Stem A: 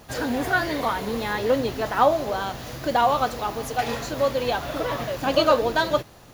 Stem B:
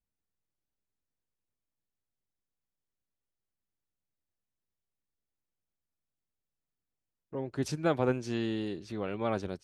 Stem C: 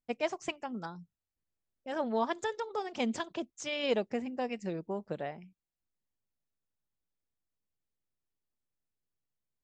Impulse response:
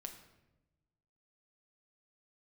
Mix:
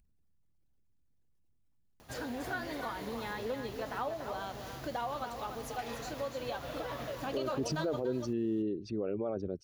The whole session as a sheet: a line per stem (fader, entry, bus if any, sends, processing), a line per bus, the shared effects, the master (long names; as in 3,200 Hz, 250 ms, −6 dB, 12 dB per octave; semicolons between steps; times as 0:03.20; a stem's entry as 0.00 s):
−10.5 dB, 2.00 s, no send, echo send −8 dB, downward compressor 2.5 to 1, threshold −26 dBFS, peak gain reduction 9 dB
+2.0 dB, 0.00 s, no send, no echo send, spectral envelope exaggerated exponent 2
muted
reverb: not used
echo: single-tap delay 289 ms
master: upward compression, threshold −57 dBFS; brickwall limiter −25 dBFS, peak gain reduction 10.5 dB